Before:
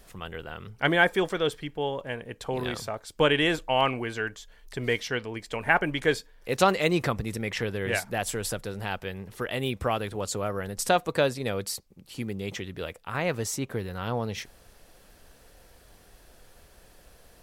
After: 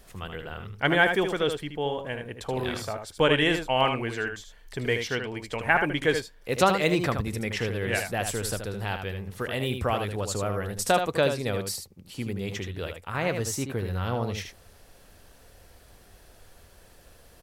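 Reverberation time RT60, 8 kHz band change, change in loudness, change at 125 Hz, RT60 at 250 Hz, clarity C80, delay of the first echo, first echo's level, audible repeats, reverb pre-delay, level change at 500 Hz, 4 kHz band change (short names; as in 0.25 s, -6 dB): none, +1.0 dB, +1.0 dB, +2.5 dB, none, none, 77 ms, -7.0 dB, 1, none, +1.0 dB, +1.0 dB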